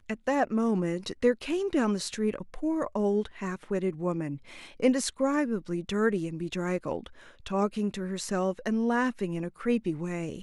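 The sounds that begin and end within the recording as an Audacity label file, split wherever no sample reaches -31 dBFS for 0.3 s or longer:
4.800000	7.060000	sound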